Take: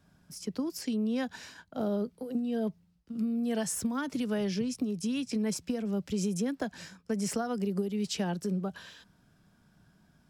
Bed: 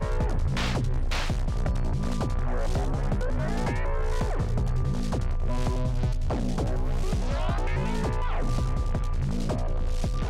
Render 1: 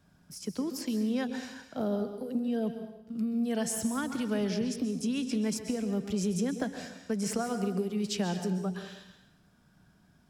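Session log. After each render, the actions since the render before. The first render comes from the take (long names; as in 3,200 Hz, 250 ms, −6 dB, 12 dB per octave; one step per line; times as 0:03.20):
dense smooth reverb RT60 0.88 s, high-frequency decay 0.95×, pre-delay 115 ms, DRR 7.5 dB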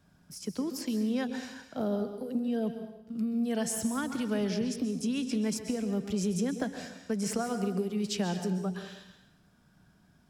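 no processing that can be heard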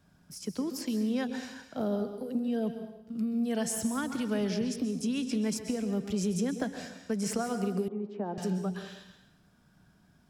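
0:07.88–0:08.38: Chebyshev band-pass filter 260–980 Hz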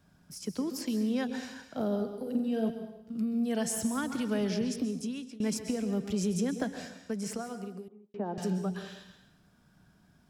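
0:02.22–0:02.70: flutter between parallel walls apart 7.7 metres, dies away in 0.43 s
0:04.83–0:05.40: fade out, to −22.5 dB
0:06.71–0:08.14: fade out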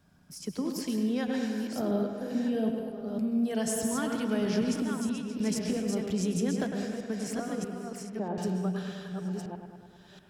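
delay that plays each chunk backwards 637 ms, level −5 dB
bucket-brigade delay 103 ms, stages 2,048, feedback 68%, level −8 dB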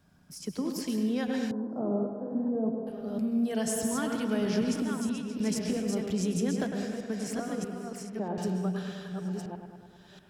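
0:01.51–0:02.87: elliptic band-pass filter 120–1,100 Hz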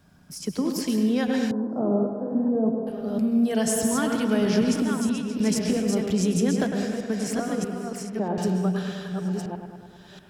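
level +6.5 dB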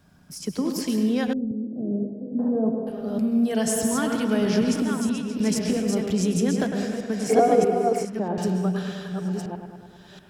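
0:01.33–0:02.39: Gaussian smoothing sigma 21 samples
0:07.29–0:08.05: hollow resonant body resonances 450/720/2,200 Hz, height 16 dB, ringing for 30 ms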